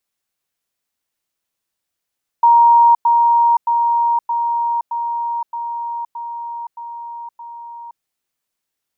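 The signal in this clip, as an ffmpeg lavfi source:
ffmpeg -f lavfi -i "aevalsrc='pow(10,(-6.5-3*floor(t/0.62))/20)*sin(2*PI*939*t)*clip(min(mod(t,0.62),0.52-mod(t,0.62))/0.005,0,1)':duration=5.58:sample_rate=44100" out.wav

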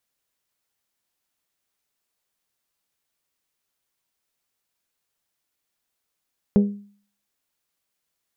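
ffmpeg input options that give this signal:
ffmpeg -f lavfi -i "aevalsrc='0.316*pow(10,-3*t/0.48)*sin(2*PI*203*t)+0.126*pow(10,-3*t/0.295)*sin(2*PI*406*t)+0.0501*pow(10,-3*t/0.26)*sin(2*PI*487.2*t)+0.02*pow(10,-3*t/0.222)*sin(2*PI*609*t)+0.00794*pow(10,-3*t/0.182)*sin(2*PI*812*t)':duration=0.89:sample_rate=44100" out.wav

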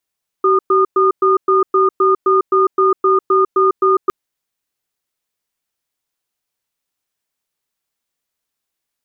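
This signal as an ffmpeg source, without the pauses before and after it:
ffmpeg -f lavfi -i "aevalsrc='0.251*(sin(2*PI*382*t)+sin(2*PI*1220*t))*clip(min(mod(t,0.26),0.15-mod(t,0.26))/0.005,0,1)':duration=3.66:sample_rate=44100" out.wav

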